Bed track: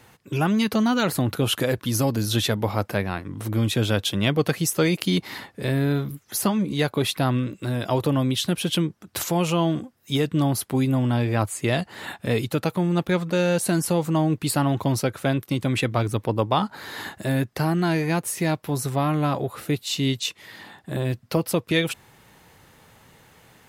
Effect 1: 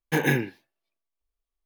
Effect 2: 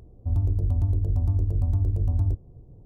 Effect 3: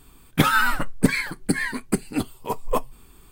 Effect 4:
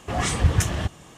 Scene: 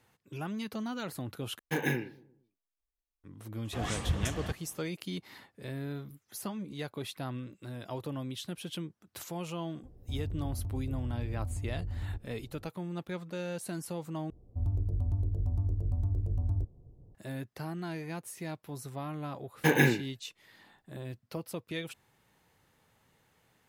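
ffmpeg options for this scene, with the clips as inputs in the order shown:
ffmpeg -i bed.wav -i cue0.wav -i cue1.wav -i cue2.wav -i cue3.wav -filter_complex "[1:a]asplit=2[link_01][link_02];[2:a]asplit=2[link_03][link_04];[0:a]volume=-16dB[link_05];[link_01]asplit=2[link_06][link_07];[link_07]adelay=116,lowpass=frequency=990:poles=1,volume=-19dB,asplit=2[link_08][link_09];[link_09]adelay=116,lowpass=frequency=990:poles=1,volume=0.48,asplit=2[link_10][link_11];[link_11]adelay=116,lowpass=frequency=990:poles=1,volume=0.48,asplit=2[link_12][link_13];[link_13]adelay=116,lowpass=frequency=990:poles=1,volume=0.48[link_14];[link_06][link_08][link_10][link_12][link_14]amix=inputs=5:normalize=0[link_15];[link_03]acompressor=threshold=-28dB:ratio=6:attack=3.2:release=140:knee=1:detection=peak[link_16];[link_05]asplit=3[link_17][link_18][link_19];[link_17]atrim=end=1.594[link_20];[link_15]atrim=end=1.65,asetpts=PTS-STARTPTS,volume=-8dB[link_21];[link_18]atrim=start=3.236:end=14.304[link_22];[link_04]atrim=end=2.85,asetpts=PTS-STARTPTS,volume=-7.5dB[link_23];[link_19]atrim=start=17.146[link_24];[4:a]atrim=end=1.17,asetpts=PTS-STARTPTS,volume=-11.5dB,afade=type=in:duration=0.004:curve=hsin,afade=type=out:start_time=1.166:duration=0.004:curve=hsin,adelay=160965S[link_25];[link_16]atrim=end=2.85,asetpts=PTS-STARTPTS,volume=-5dB,afade=type=in:duration=0.004:curve=hsin,afade=type=out:start_time=2.846:duration=0.004:curve=hsin,adelay=9830[link_26];[link_02]atrim=end=1.65,asetpts=PTS-STARTPTS,volume=-1dB,afade=type=in:duration=0.004:curve=hsin,afade=type=out:start_time=1.646:duration=0.004:curve=hsin,adelay=19520[link_27];[link_20][link_21]acrossfade=duration=0.004:curve1=hsin:curve2=hsin[link_28];[link_28][link_22]acrossfade=duration=0.004:curve1=hsin:curve2=hsin[link_29];[link_29][link_23]acrossfade=duration=0.004:curve1=hsin:curve2=hsin[link_30];[link_30][link_24]acrossfade=duration=0.004:curve1=hsin:curve2=hsin[link_31];[link_31][link_25][link_26][link_27]amix=inputs=4:normalize=0" out.wav

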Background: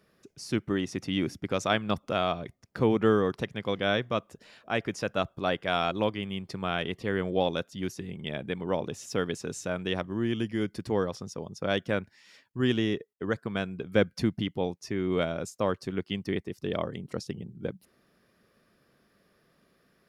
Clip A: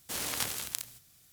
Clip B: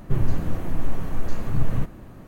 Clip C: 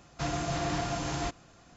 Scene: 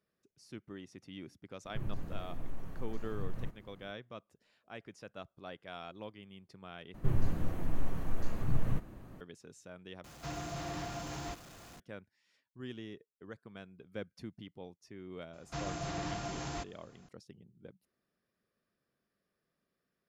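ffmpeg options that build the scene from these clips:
ffmpeg -i bed.wav -i cue0.wav -i cue1.wav -i cue2.wav -filter_complex "[2:a]asplit=2[link_01][link_02];[3:a]asplit=2[link_03][link_04];[0:a]volume=-18.5dB[link_05];[link_01]alimiter=limit=-10.5dB:level=0:latency=1:release=39[link_06];[link_03]aeval=exprs='val(0)+0.5*0.0112*sgn(val(0))':channel_layout=same[link_07];[link_05]asplit=3[link_08][link_09][link_10];[link_08]atrim=end=6.944[link_11];[link_02]atrim=end=2.27,asetpts=PTS-STARTPTS,volume=-8dB[link_12];[link_09]atrim=start=9.206:end=10.044[link_13];[link_07]atrim=end=1.76,asetpts=PTS-STARTPTS,volume=-10dB[link_14];[link_10]atrim=start=11.796[link_15];[link_06]atrim=end=2.27,asetpts=PTS-STARTPTS,volume=-16dB,afade=type=in:duration=0.004:curve=hsin,afade=type=out:start_time=2.266:duration=0.004:curve=hsin,adelay=1650[link_16];[link_04]atrim=end=1.76,asetpts=PTS-STARTPTS,volume=-7dB,afade=type=in:duration=0.004:curve=hsin,afade=type=out:start_time=1.756:duration=0.004:curve=hsin,adelay=15330[link_17];[link_11][link_12]acrossfade=duration=0.004:curve1=hsin:curve2=hsin[link_18];[link_18][link_13]acrossfade=duration=0.004:curve1=hsin:curve2=hsin[link_19];[link_19][link_14]acrossfade=duration=0.004:curve1=hsin:curve2=hsin[link_20];[link_20][link_15]acrossfade=duration=0.004:curve1=hsin:curve2=hsin[link_21];[link_21][link_16][link_17]amix=inputs=3:normalize=0" out.wav

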